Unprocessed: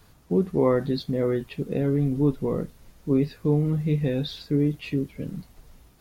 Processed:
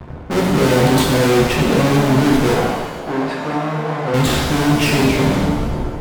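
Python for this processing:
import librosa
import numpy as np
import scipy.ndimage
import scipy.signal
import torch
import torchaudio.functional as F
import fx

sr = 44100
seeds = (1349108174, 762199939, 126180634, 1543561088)

p1 = fx.tracing_dist(x, sr, depth_ms=0.4)
p2 = fx.env_lowpass(p1, sr, base_hz=730.0, full_db=-19.0)
p3 = fx.rider(p2, sr, range_db=10, speed_s=0.5)
p4 = p2 + (p3 * librosa.db_to_amplitude(0.5))
p5 = fx.fuzz(p4, sr, gain_db=42.0, gate_db=-47.0)
p6 = fx.bandpass_q(p5, sr, hz=780.0, q=0.77, at=(2.54, 4.14))
p7 = fx.rev_shimmer(p6, sr, seeds[0], rt60_s=1.3, semitones=7, shimmer_db=-8, drr_db=-1.5)
y = p7 * librosa.db_to_amplitude(-4.5)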